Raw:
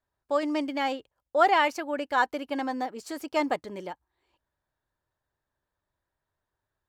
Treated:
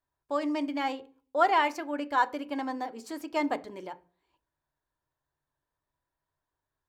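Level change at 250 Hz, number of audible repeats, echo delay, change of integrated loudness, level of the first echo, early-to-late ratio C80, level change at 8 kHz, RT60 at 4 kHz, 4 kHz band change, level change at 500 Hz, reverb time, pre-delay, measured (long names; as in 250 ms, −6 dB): −1.0 dB, no echo audible, no echo audible, −2.5 dB, no echo audible, 25.0 dB, −4.0 dB, 0.45 s, −4.0 dB, −4.0 dB, 0.40 s, 3 ms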